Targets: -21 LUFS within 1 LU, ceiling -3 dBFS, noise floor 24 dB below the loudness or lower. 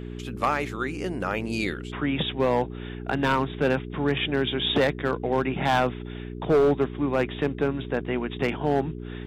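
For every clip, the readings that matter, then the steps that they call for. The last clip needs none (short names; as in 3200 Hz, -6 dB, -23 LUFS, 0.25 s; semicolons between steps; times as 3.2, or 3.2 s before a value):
clipped 1.3%; flat tops at -15.0 dBFS; hum 60 Hz; harmonics up to 420 Hz; hum level -33 dBFS; loudness -26.0 LUFS; peak -15.0 dBFS; loudness target -21.0 LUFS
-> clip repair -15 dBFS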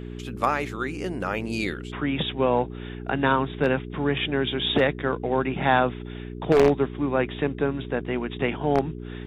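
clipped 0.0%; hum 60 Hz; harmonics up to 420 Hz; hum level -33 dBFS
-> de-hum 60 Hz, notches 7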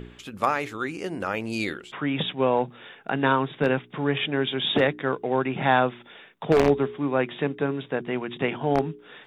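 hum none; loudness -25.5 LUFS; peak -6.0 dBFS; loudness target -21.0 LUFS
-> gain +4.5 dB; limiter -3 dBFS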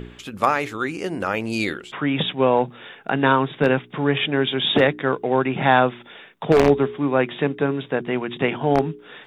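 loudness -21.0 LUFS; peak -3.0 dBFS; noise floor -46 dBFS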